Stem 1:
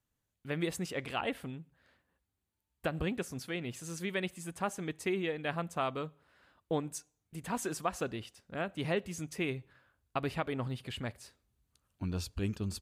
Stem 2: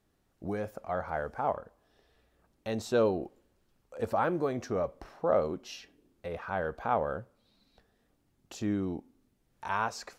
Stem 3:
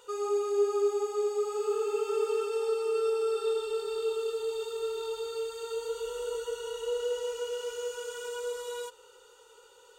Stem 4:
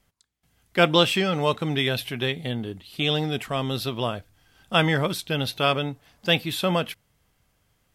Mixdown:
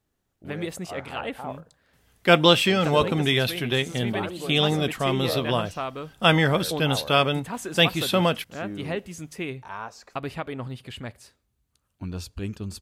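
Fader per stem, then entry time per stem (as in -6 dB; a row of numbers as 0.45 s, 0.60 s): +2.5 dB, -5.0 dB, mute, +2.0 dB; 0.00 s, 0.00 s, mute, 1.50 s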